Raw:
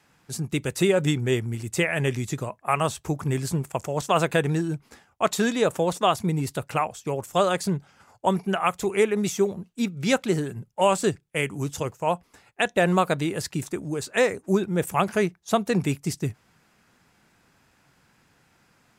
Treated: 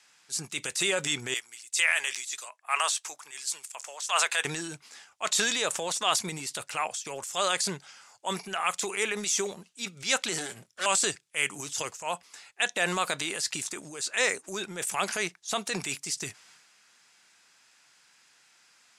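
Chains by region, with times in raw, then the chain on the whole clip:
0:01.34–0:04.45: high-pass filter 790 Hz + multiband upward and downward expander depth 70%
0:10.38–0:10.86: lower of the sound and its delayed copy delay 0.55 ms + double-tracking delay 24 ms −12.5 dB
whole clip: meter weighting curve ITU-R 468; transient designer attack −6 dB, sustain +6 dB; level −4 dB

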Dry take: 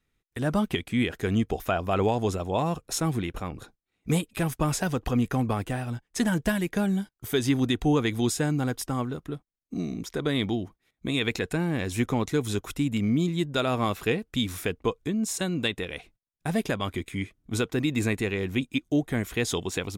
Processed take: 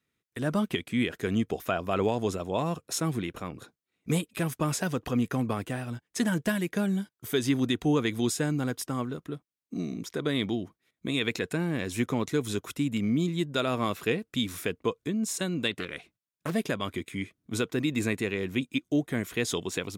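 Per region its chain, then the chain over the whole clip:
0:15.71–0:16.53: notch filter 480 Hz, Q 9 + highs frequency-modulated by the lows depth 0.73 ms
whole clip: high-pass filter 120 Hz 12 dB per octave; parametric band 800 Hz −5.5 dB 0.27 octaves; level −1.5 dB

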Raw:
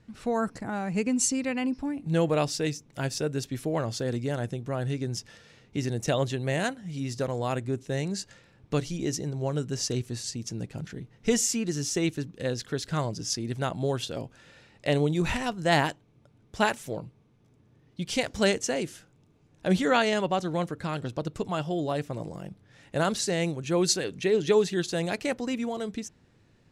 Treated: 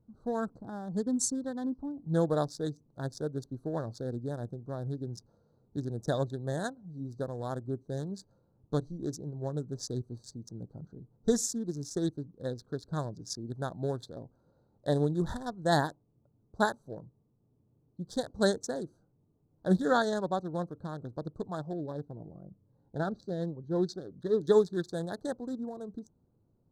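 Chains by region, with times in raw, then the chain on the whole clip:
0:21.73–0:24.41: low-pass filter 3,500 Hz + phaser whose notches keep moving one way falling 1.2 Hz
whole clip: adaptive Wiener filter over 25 samples; elliptic band-stop filter 1,700–3,600 Hz, stop band 40 dB; expander for the loud parts 1.5 to 1, over −35 dBFS

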